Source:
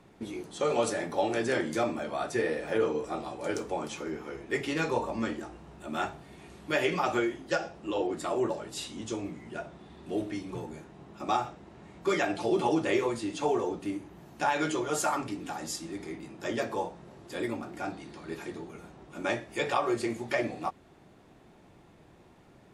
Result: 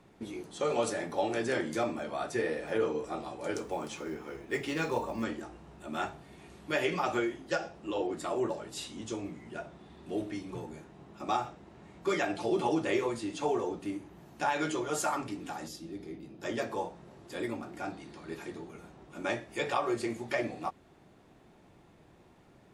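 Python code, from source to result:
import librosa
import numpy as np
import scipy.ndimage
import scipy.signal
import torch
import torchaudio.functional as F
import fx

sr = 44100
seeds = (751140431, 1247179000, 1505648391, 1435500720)

y = fx.quant_float(x, sr, bits=4, at=(3.63, 5.24))
y = fx.graphic_eq(y, sr, hz=(1000, 2000, 8000), db=(-8, -7, -12), at=(15.67, 16.41), fade=0.02)
y = F.gain(torch.from_numpy(y), -2.5).numpy()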